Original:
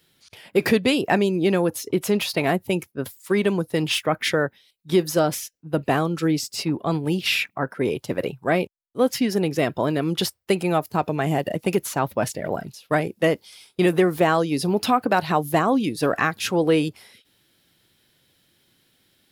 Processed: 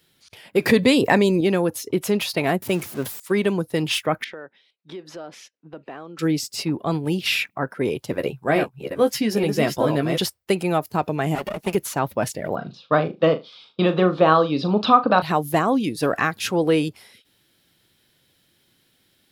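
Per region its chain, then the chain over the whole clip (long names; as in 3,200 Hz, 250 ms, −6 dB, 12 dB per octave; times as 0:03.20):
0:00.69–0:01.41: EQ curve with evenly spaced ripples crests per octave 1, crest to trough 6 dB + envelope flattener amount 50%
0:02.62–0:03.20: converter with a step at zero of −31 dBFS + high-pass filter 110 Hz
0:04.24–0:06.19: band-pass filter 260–3,400 Hz + downward compressor 3 to 1, threshold −38 dBFS
0:08.12–0:10.18: delay that plays each chunk backwards 438 ms, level −5.5 dB + double-tracking delay 14 ms −7 dB
0:11.35–0:11.75: lower of the sound and its delayed copy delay 4.9 ms + high-pass filter 66 Hz
0:12.55–0:15.22: loudspeaker in its box 130–4,300 Hz, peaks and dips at 140 Hz +3 dB, 210 Hz +4 dB, 530 Hz +5 dB, 1,200 Hz +10 dB, 2,000 Hz −9 dB, 3,800 Hz +7 dB + notch filter 380 Hz + flutter between parallel walls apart 6.5 metres, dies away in 0.21 s
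whole clip: no processing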